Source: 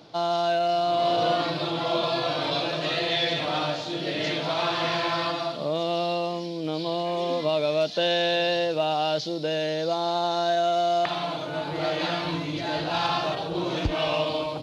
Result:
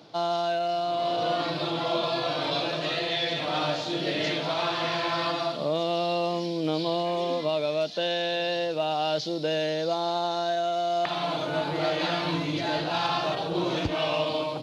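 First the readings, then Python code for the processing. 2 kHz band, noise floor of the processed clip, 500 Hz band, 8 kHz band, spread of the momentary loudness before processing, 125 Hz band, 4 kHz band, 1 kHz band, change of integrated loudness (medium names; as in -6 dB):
-1.5 dB, -32 dBFS, -1.5 dB, no reading, 6 LU, -1.0 dB, -1.5 dB, -2.0 dB, -1.5 dB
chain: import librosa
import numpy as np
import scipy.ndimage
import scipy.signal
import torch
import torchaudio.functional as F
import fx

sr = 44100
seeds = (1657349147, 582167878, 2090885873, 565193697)

y = scipy.signal.sosfilt(scipy.signal.butter(2, 100.0, 'highpass', fs=sr, output='sos'), x)
y = fx.rider(y, sr, range_db=10, speed_s=0.5)
y = y * 10.0 ** (-1.5 / 20.0)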